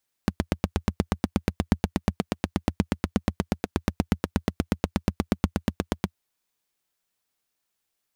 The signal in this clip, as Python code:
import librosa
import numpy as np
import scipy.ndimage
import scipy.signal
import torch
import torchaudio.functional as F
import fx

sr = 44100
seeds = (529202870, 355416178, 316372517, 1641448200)

y = fx.engine_single(sr, seeds[0], length_s=5.88, rpm=1000, resonances_hz=(83.0, 190.0))